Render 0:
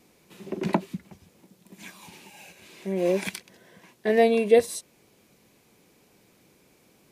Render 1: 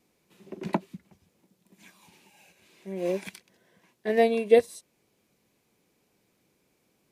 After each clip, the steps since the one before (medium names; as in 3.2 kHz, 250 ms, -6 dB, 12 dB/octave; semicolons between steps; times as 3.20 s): upward expansion 1.5:1, over -33 dBFS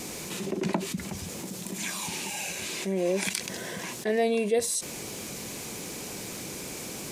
peaking EQ 7.3 kHz +8.5 dB 1.3 oct; level flattener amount 70%; trim -8.5 dB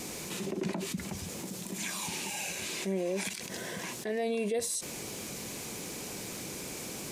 peak limiter -21.5 dBFS, peak gain reduction 10.5 dB; trim -2.5 dB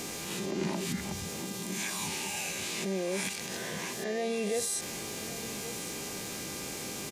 reverse spectral sustain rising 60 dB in 0.55 s; delay 1121 ms -15 dB; mains buzz 400 Hz, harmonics 18, -46 dBFS -1 dB/octave; trim -1 dB